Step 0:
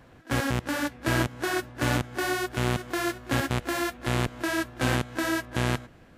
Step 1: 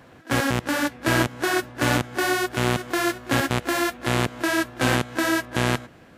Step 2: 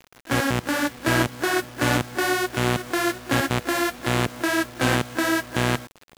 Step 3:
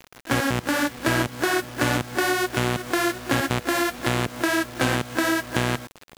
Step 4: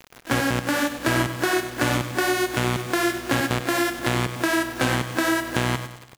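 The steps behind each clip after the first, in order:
high-pass filter 140 Hz 6 dB per octave; level +5.5 dB
bit reduction 7 bits
downward compressor 3 to 1, threshold −23 dBFS, peak gain reduction 7 dB; level +4 dB
repeating echo 97 ms, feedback 45%, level −11 dB

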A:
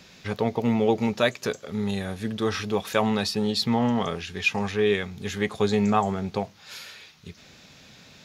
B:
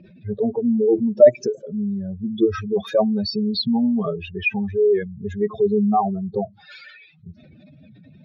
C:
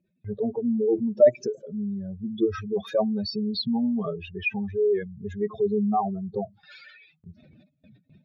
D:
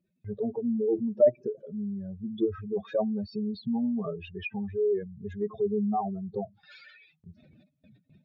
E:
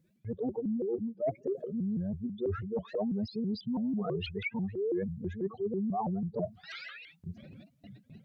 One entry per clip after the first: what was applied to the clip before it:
expanding power law on the bin magnitudes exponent 3.4; hollow resonant body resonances 340/610 Hz, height 14 dB, ringing for 65 ms; low-pass that shuts in the quiet parts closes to 2,200 Hz, open at −20.5 dBFS; level +2.5 dB
noise gate with hold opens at −40 dBFS; level −5.5 dB
treble cut that deepens with the level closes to 990 Hz, closed at −23 dBFS; level −3.5 dB
reversed playback; downward compressor 8 to 1, threshold −38 dBFS, peak gain reduction 22.5 dB; reversed playback; pitch modulation by a square or saw wave saw up 6.1 Hz, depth 250 cents; level +7.5 dB

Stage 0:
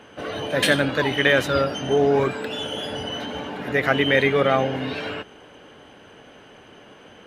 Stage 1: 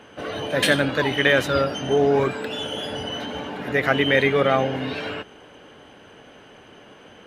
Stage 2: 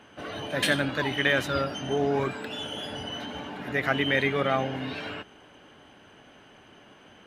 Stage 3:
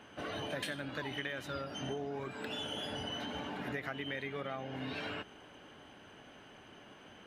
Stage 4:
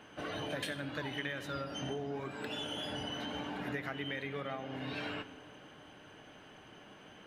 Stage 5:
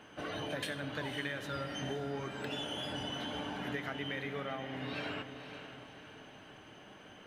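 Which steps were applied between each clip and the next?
no processing that can be heard
parametric band 480 Hz −6 dB 0.42 octaves; level −5 dB
downward compressor 16 to 1, threshold −33 dBFS, peak gain reduction 15 dB; level −2.5 dB
rectangular room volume 2,000 cubic metres, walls mixed, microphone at 0.52 metres
feedback delay with all-pass diffusion 519 ms, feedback 44%, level −9.5 dB

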